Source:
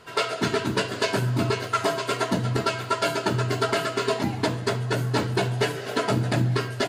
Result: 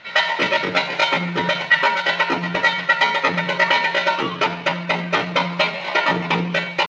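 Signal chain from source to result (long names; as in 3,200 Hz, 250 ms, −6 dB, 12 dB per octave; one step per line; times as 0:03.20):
inverse Chebyshev low-pass filter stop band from 11,000 Hz, stop band 80 dB
tilt shelving filter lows −9 dB, about 1,200 Hz
pitch shifter +6 semitones
on a send at −19.5 dB: convolution reverb, pre-delay 77 ms
on the sum: dynamic equaliser 910 Hz, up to +4 dB, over −40 dBFS, Q 1
level +8 dB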